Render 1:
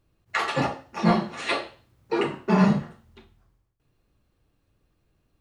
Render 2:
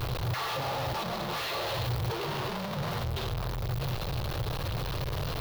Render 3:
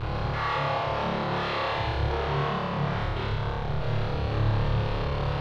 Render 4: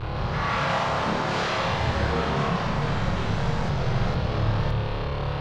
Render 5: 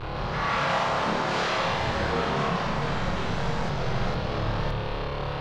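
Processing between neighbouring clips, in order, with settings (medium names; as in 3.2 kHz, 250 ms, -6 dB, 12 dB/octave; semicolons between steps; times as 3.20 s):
one-bit comparator; graphic EQ 125/250/500/1000/2000/4000/8000 Hz +10/-11/+5/+4/-3/+7/-11 dB; trim -6.5 dB
low-pass 2.6 kHz 12 dB/octave; on a send: flutter echo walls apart 4.8 m, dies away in 1.4 s
ever faster or slower copies 160 ms, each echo +3 st, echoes 3
peaking EQ 88 Hz -7.5 dB 1.6 oct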